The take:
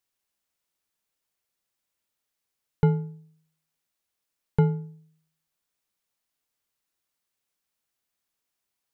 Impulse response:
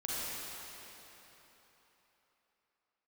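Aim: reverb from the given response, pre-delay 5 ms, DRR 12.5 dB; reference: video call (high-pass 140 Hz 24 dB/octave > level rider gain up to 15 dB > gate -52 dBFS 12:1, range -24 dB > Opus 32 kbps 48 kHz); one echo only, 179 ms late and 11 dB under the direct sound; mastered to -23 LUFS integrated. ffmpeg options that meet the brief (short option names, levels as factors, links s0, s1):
-filter_complex "[0:a]aecho=1:1:179:0.282,asplit=2[s0][s1];[1:a]atrim=start_sample=2205,adelay=5[s2];[s1][s2]afir=irnorm=-1:irlink=0,volume=0.133[s3];[s0][s3]amix=inputs=2:normalize=0,highpass=f=140:w=0.5412,highpass=f=140:w=1.3066,dynaudnorm=m=5.62,agate=range=0.0631:threshold=0.00251:ratio=12,volume=1.78" -ar 48000 -c:a libopus -b:a 32k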